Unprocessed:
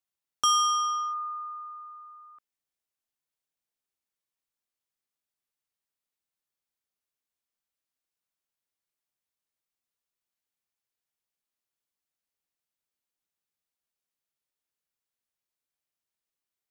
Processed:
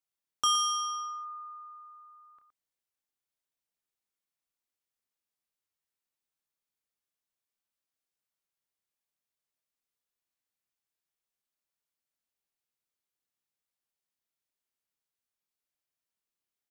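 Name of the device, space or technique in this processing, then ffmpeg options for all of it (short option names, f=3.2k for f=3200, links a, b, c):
slapback doubling: -filter_complex "[0:a]asplit=3[a][b][c];[b]adelay=29,volume=-8dB[d];[c]adelay=117,volume=-10dB[e];[a][d][e]amix=inputs=3:normalize=0,volume=-3dB"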